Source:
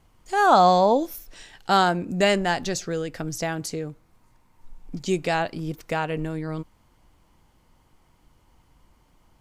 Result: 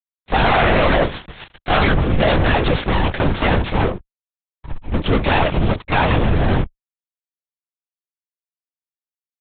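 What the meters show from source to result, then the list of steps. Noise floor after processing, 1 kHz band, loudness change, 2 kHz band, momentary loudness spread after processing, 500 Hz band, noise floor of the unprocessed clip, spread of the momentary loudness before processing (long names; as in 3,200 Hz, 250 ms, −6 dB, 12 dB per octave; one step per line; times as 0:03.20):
below −85 dBFS, +2.0 dB, +5.5 dB, +8.5 dB, 11 LU, +4.0 dB, −62 dBFS, 17 LU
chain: lower of the sound and its delayed copy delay 5.1 ms
mains-hum notches 50/100/150 Hz
fuzz pedal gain 39 dB, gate −42 dBFS
linear-prediction vocoder at 8 kHz whisper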